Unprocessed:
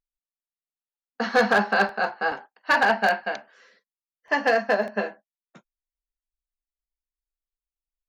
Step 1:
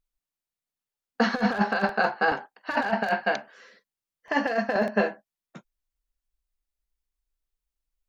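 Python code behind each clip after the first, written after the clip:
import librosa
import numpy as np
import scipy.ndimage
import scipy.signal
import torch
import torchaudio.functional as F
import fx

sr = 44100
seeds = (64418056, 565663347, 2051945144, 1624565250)

y = fx.over_compress(x, sr, threshold_db=-23.0, ratio=-0.5)
y = fx.low_shelf(y, sr, hz=190.0, db=7.5)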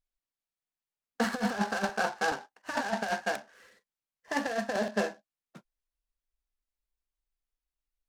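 y = fx.noise_mod_delay(x, sr, seeds[0], noise_hz=3500.0, depth_ms=0.032)
y = y * 10.0 ** (-6.0 / 20.0)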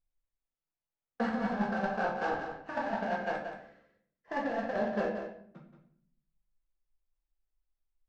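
y = fx.spacing_loss(x, sr, db_at_10k=31)
y = y + 10.0 ** (-8.5 / 20.0) * np.pad(y, (int(178 * sr / 1000.0), 0))[:len(y)]
y = fx.room_shoebox(y, sr, seeds[1], volume_m3=99.0, walls='mixed', distance_m=0.79)
y = y * 10.0 ** (-2.5 / 20.0)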